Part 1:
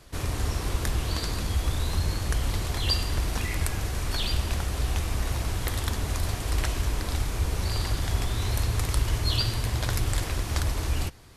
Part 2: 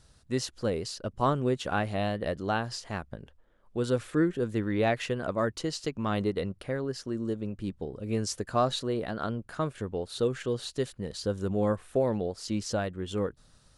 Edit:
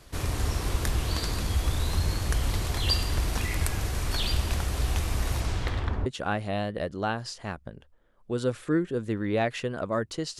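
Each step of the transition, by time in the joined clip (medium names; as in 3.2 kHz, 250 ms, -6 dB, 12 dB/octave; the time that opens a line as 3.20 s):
part 1
5.40–6.06 s: low-pass 11 kHz -> 1 kHz
6.06 s: go over to part 2 from 1.52 s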